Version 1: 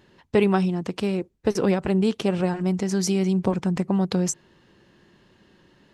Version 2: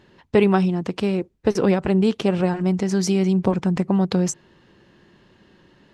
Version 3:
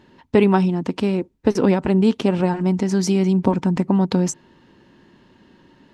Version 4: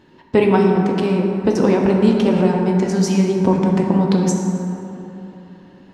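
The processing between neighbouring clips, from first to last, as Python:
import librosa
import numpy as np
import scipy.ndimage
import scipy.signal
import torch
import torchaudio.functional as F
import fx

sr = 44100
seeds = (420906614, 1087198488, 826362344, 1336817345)

y1 = fx.high_shelf(x, sr, hz=8000.0, db=-9.0)
y1 = y1 * 10.0 ** (3.0 / 20.0)
y2 = fx.small_body(y1, sr, hz=(260.0, 920.0), ring_ms=45, db=8)
y3 = fx.rev_plate(y2, sr, seeds[0], rt60_s=3.2, hf_ratio=0.4, predelay_ms=0, drr_db=0.0)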